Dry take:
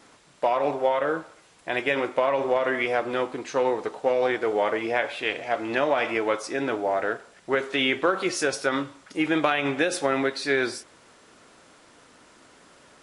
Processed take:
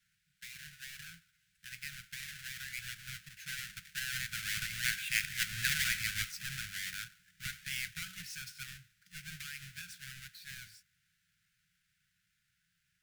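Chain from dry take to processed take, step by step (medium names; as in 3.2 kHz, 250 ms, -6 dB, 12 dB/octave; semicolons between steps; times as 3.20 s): square wave that keeps the level; Doppler pass-by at 5.44 s, 8 m/s, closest 5.8 m; Chebyshev band-stop 180–1500 Hz, order 5; trim -5 dB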